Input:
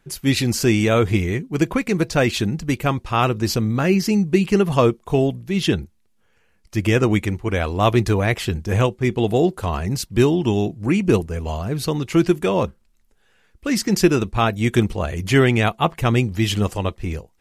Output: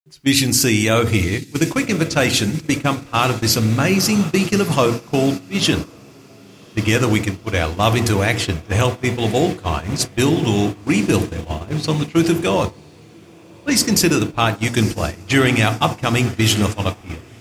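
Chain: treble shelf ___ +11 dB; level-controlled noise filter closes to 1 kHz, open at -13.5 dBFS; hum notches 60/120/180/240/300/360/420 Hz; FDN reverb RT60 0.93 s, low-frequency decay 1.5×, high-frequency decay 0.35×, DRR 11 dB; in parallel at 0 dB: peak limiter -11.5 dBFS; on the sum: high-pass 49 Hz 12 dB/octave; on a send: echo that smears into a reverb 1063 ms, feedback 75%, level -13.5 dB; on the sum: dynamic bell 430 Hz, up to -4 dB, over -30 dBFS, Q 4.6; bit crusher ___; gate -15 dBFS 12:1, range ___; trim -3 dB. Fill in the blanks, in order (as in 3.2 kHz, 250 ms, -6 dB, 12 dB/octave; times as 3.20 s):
3.5 kHz, 8-bit, -16 dB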